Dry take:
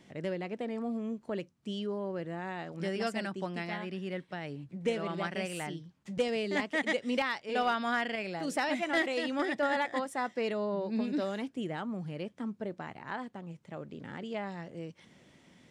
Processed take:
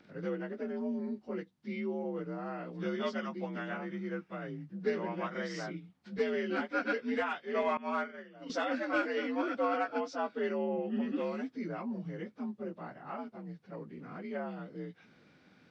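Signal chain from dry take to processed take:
partials spread apart or drawn together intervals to 86%
0:07.77–0:08.50: downward expander −28 dBFS

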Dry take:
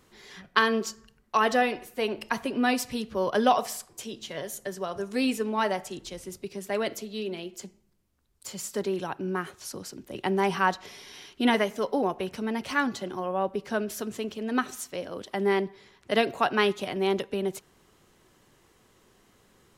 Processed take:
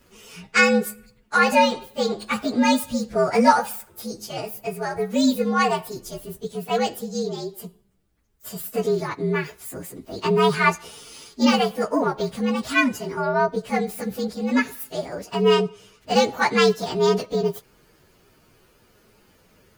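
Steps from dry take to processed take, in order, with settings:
partials spread apart or drawn together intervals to 118%
level +8.5 dB

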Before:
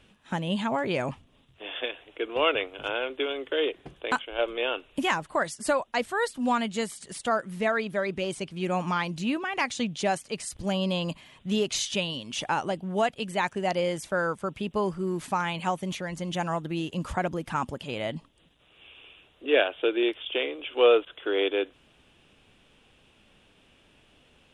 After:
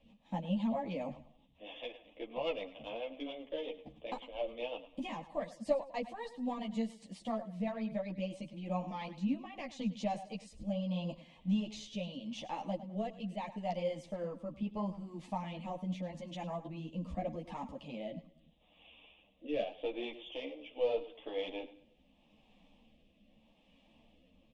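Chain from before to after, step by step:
tube saturation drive 13 dB, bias 0.3
rotating-speaker cabinet horn 7.5 Hz, later 0.8 Hz, at 0:08.26
in parallel at +0.5 dB: downward compressor, threshold −41 dBFS, peak gain reduction 18.5 dB
on the sum: head-to-tape spacing loss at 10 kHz 22 dB
phaser with its sweep stopped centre 390 Hz, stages 6
on a send: repeating echo 103 ms, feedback 33%, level −15 dB
on the sum: string-ensemble chorus
level −1.5 dB

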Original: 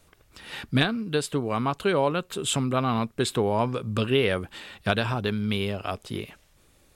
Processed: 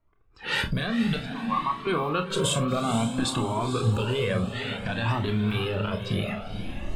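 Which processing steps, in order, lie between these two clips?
one scale factor per block 7 bits
camcorder AGC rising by 20 dB per second
noise reduction from a noise print of the clip's start 17 dB
0:01.16–0:01.87: pair of resonant band-passes 1,500 Hz, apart 0.86 octaves
downward compressor, threshold −22 dBFS, peak gain reduction 8 dB
brickwall limiter −19.5 dBFS, peak gain reduction 9.5 dB
low-pass that shuts in the quiet parts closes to 1,500 Hz, open at −24.5 dBFS
feedback delay with all-pass diffusion 482 ms, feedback 45%, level −8 dB
convolution reverb RT60 0.20 s, pre-delay 26 ms, DRR 6 dB
flanger whose copies keep moving one way rising 0.57 Hz
level +6.5 dB

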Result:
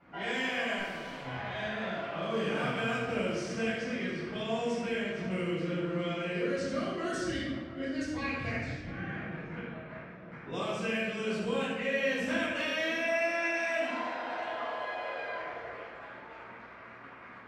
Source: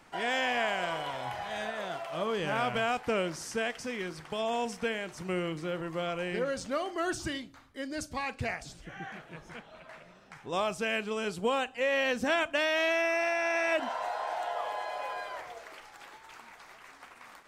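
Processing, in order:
high-pass filter 75 Hz
parametric band 830 Hz −8 dB 0.94 octaves
low-pass that shuts in the quiet parts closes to 1,400 Hz, open at −28 dBFS
downward compressor 2 to 1, threshold −44 dBFS, peak gain reduction 10 dB
0:00.78–0:01.25: tube saturation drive 48 dB, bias 0.8
on a send: tape delay 698 ms, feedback 43%, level −11.5 dB, low-pass 1,100 Hz
on the sum: rectangular room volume 760 cubic metres, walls mixed, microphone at 7.2 metres
level −5.5 dB

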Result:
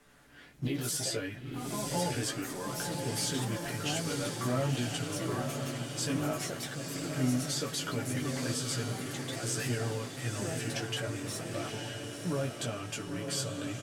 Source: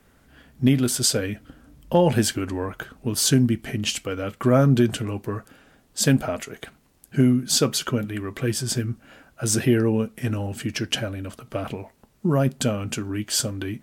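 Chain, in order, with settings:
mu-law and A-law mismatch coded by mu
low-pass filter 12,000 Hz 12 dB per octave
low-shelf EQ 470 Hz −7 dB
comb filter 6.9 ms
brickwall limiter −15.5 dBFS, peak gain reduction 10.5 dB
chorus effect 0.42 Hz, delay 16 ms, depth 2.1 ms
delay with pitch and tempo change per echo 94 ms, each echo +3 semitones, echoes 2, each echo −6 dB
on a send: feedback delay with all-pass diffusion 957 ms, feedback 52%, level −4.5 dB
on the sum: level −6 dB

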